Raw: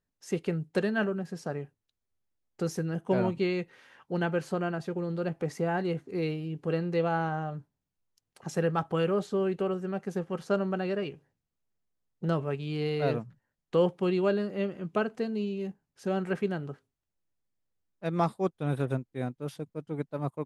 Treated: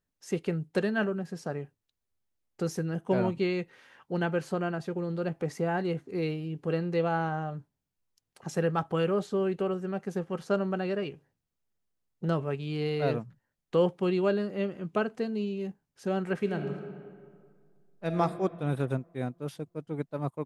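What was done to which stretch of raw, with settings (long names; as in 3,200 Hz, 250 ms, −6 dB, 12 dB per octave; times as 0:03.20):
0:16.35–0:18.20: thrown reverb, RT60 2 s, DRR 4.5 dB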